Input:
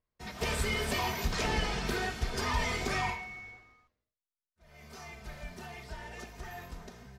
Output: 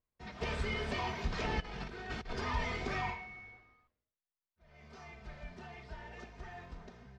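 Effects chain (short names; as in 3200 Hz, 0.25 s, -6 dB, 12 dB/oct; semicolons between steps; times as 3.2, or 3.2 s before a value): 1.6–2.33 negative-ratio compressor -37 dBFS, ratio -0.5; air absorption 150 m; gain -3.5 dB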